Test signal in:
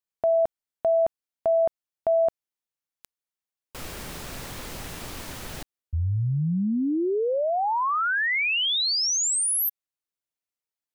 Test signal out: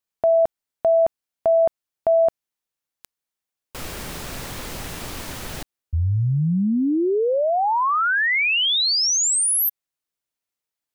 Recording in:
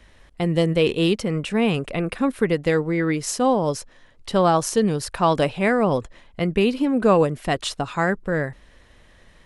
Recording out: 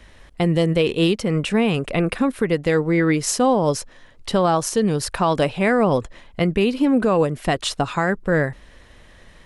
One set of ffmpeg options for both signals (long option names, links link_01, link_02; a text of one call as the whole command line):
ffmpeg -i in.wav -af "alimiter=limit=-13.5dB:level=0:latency=1:release=276,volume=4.5dB" out.wav